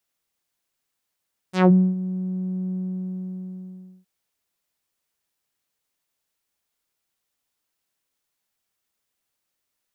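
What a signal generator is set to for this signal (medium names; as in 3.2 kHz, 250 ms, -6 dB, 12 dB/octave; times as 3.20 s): synth note saw F#3 12 dB/octave, low-pass 190 Hz, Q 1.5, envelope 6 oct, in 0.18 s, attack 127 ms, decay 0.29 s, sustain -15 dB, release 1.33 s, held 1.19 s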